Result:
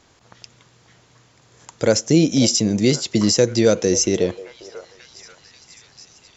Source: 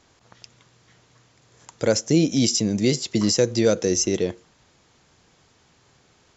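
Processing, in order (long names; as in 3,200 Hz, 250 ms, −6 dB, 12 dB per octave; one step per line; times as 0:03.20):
echo through a band-pass that steps 537 ms, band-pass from 680 Hz, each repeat 0.7 octaves, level −11 dB
level +3.5 dB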